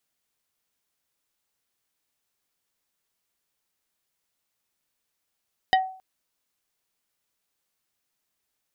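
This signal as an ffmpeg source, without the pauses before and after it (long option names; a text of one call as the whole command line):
ffmpeg -f lavfi -i "aevalsrc='0.2*pow(10,-3*t/0.46)*sin(2*PI*755*t)+0.133*pow(10,-3*t/0.153)*sin(2*PI*1887.5*t)+0.0891*pow(10,-3*t/0.087)*sin(2*PI*3020*t)+0.0596*pow(10,-3*t/0.067)*sin(2*PI*3775*t)+0.0398*pow(10,-3*t/0.049)*sin(2*PI*4907.5*t)':duration=0.27:sample_rate=44100" out.wav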